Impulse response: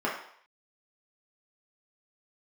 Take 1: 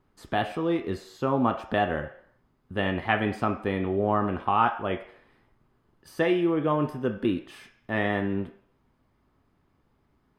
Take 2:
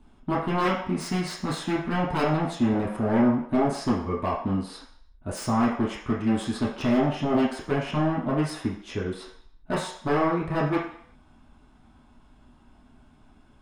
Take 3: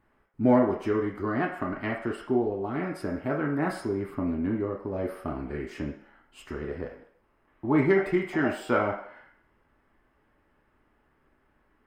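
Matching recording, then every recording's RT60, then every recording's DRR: 2; 0.65, 0.65, 0.65 s; 6.0, -5.5, -1.0 dB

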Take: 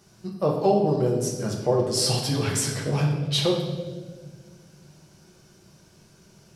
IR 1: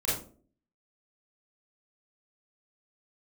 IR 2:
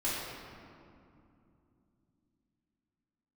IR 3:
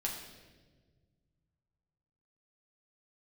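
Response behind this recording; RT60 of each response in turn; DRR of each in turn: 3; 0.45, 2.7, 1.4 s; -9.5, -11.0, -2.0 dB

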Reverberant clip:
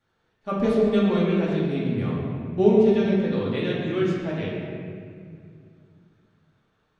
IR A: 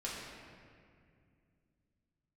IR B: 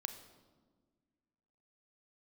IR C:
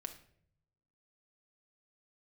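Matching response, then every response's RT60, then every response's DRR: A; 2.2, 1.5, 0.65 s; -6.5, 8.0, 5.0 dB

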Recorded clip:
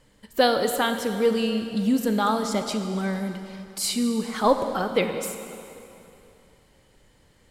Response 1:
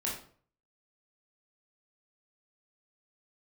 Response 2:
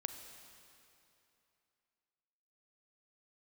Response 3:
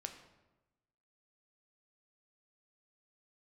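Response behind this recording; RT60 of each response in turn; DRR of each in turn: 2; 0.50, 2.9, 1.1 s; -5.0, 7.0, 5.0 dB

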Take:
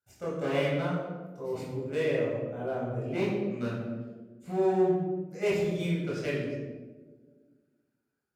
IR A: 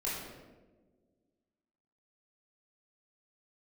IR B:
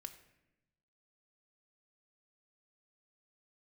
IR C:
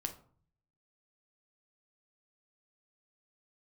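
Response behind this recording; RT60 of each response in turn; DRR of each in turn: A; not exponential, 0.90 s, 0.50 s; -7.5, 6.5, 5.5 dB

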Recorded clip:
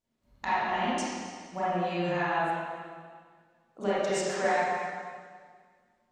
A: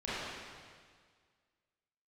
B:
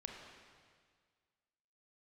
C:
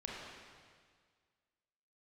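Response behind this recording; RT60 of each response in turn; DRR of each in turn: A; 1.8, 1.8, 1.8 s; -12.0, 0.5, -4.0 dB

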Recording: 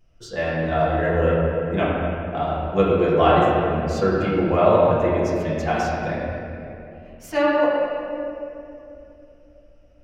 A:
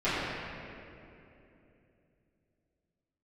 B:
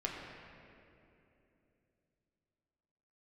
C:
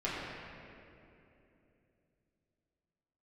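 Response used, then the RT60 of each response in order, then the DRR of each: C; 2.9, 2.9, 2.9 s; -16.0, -2.5, -9.0 dB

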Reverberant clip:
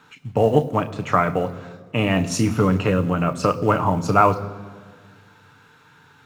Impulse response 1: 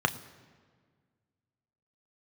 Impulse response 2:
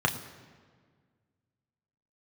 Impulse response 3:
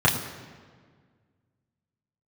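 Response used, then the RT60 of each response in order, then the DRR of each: 1; 1.7, 1.7, 1.7 s; 8.0, 2.5, -5.0 dB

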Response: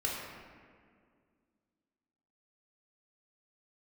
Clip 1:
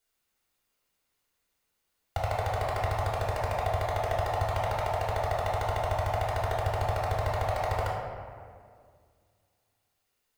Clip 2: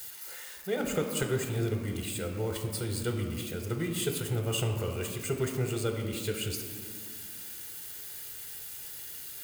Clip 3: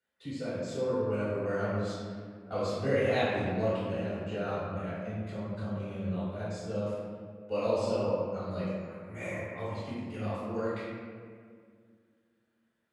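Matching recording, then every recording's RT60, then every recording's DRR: 1; 2.1, 2.1, 2.1 s; -4.5, 3.0, -13.5 dB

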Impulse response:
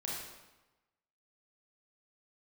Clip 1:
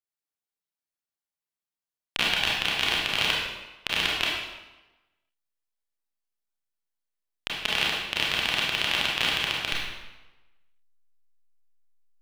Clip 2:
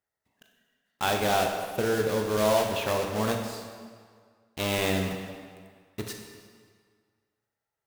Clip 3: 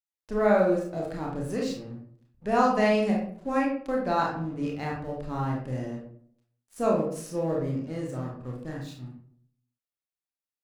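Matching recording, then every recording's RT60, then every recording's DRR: 1; 1.1, 1.8, 0.60 s; -4.5, 2.5, -2.5 dB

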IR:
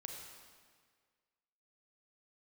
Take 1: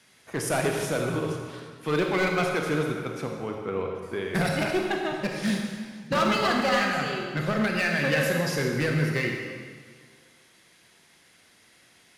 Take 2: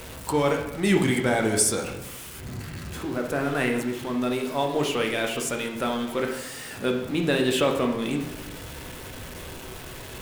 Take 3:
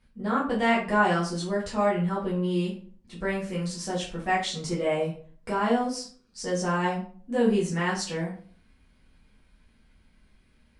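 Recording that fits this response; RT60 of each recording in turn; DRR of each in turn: 1; 1.7, 0.95, 0.45 s; 1.5, 2.0, -7.0 dB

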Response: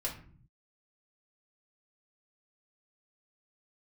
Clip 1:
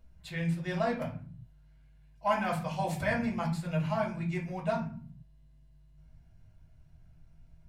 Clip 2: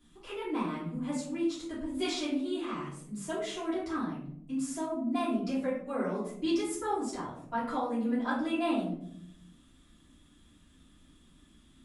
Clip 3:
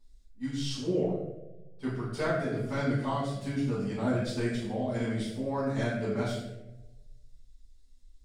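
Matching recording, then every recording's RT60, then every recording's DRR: 1; 0.50, 0.70, 1.1 s; -3.5, -11.5, -11.0 dB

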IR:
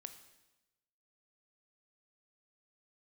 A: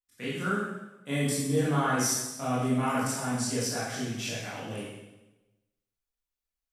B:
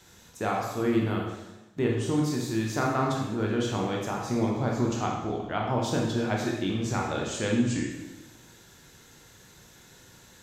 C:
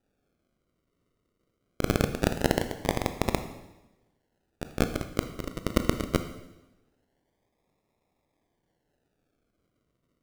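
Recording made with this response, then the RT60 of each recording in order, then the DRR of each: C; 1.0, 1.0, 1.0 s; -10.5, -1.5, 8.5 dB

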